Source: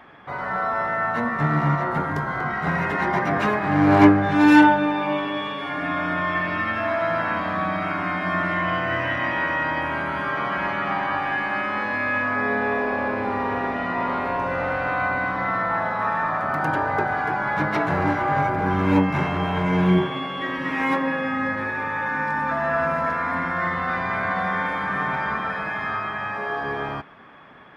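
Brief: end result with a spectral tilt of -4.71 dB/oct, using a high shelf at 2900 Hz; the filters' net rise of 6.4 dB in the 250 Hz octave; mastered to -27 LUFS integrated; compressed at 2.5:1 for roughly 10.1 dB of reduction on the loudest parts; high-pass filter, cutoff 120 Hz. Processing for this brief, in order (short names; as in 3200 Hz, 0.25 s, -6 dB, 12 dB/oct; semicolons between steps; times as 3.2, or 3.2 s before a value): HPF 120 Hz; bell 250 Hz +8.5 dB; high shelf 2900 Hz +3 dB; compressor 2.5:1, threshold -19 dBFS; gain -4 dB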